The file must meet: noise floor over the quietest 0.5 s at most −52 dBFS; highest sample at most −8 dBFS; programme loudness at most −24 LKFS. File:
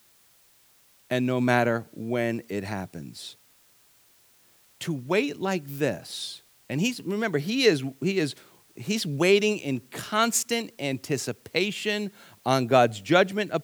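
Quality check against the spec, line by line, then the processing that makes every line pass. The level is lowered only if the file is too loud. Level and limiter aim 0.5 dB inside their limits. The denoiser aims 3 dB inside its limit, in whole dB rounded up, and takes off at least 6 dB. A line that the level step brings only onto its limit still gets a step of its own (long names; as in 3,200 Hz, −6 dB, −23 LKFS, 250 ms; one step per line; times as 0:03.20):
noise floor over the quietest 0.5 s −60 dBFS: in spec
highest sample −6.0 dBFS: out of spec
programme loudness −26.0 LKFS: in spec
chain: brickwall limiter −8.5 dBFS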